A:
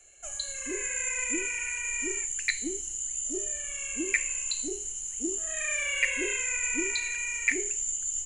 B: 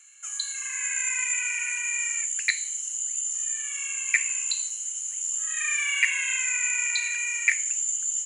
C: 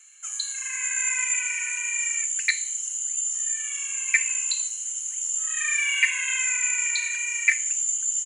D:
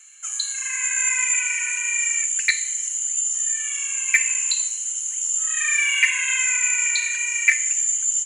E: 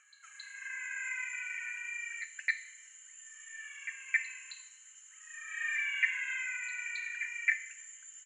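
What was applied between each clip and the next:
steep high-pass 1 kHz 48 dB/octave; trim +4 dB
comb 3.9 ms, depth 53%
saturation -8 dBFS, distortion -25 dB; simulated room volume 1500 m³, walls mixed, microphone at 0.36 m; trim +4 dB
band-pass filter 1.7 kHz, Q 3.4; pre-echo 269 ms -12 dB; trim -6.5 dB

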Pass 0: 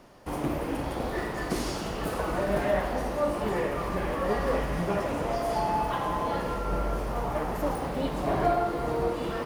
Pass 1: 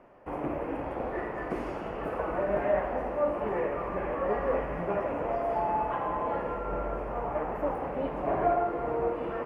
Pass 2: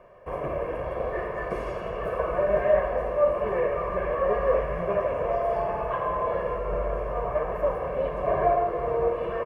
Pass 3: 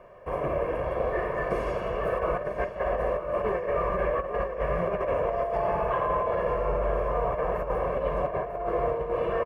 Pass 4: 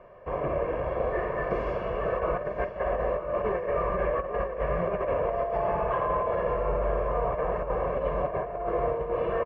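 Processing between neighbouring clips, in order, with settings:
FFT filter 170 Hz 0 dB, 550 Hz +8 dB, 2.6 kHz +2 dB, 3.8 kHz -17 dB; trim -7.5 dB
comb 1.8 ms, depth 79%; trim +1.5 dB
compressor with a negative ratio -27 dBFS, ratio -0.5; on a send: feedback delay 945 ms, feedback 46%, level -10.5 dB
distance through air 160 m

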